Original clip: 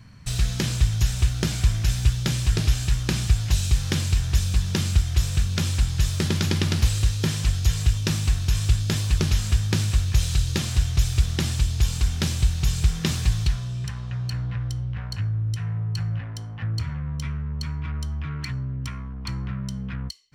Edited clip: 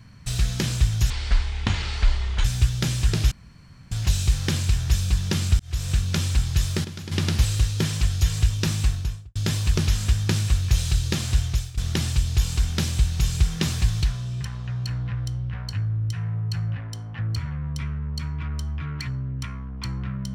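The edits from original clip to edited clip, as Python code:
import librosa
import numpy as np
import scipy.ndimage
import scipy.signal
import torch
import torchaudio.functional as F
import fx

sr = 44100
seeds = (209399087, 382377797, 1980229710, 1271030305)

y = fx.studio_fade_out(x, sr, start_s=8.26, length_s=0.53)
y = fx.edit(y, sr, fx.speed_span(start_s=1.1, length_s=0.78, speed=0.58),
    fx.room_tone_fill(start_s=2.75, length_s=0.6),
    fx.fade_in_span(start_s=5.03, length_s=0.32),
    fx.fade_down_up(start_s=5.99, length_s=0.85, db=-12.5, fade_s=0.29, curve='log'),
    fx.fade_out_to(start_s=10.87, length_s=0.34, floor_db=-22.5), tone=tone)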